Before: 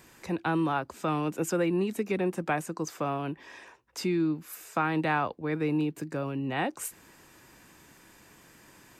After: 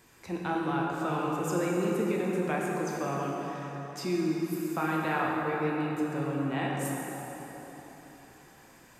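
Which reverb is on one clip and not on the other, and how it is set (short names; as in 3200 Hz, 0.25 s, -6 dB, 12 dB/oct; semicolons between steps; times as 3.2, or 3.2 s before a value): plate-style reverb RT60 4.2 s, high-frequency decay 0.6×, DRR -3.5 dB; gain -5.5 dB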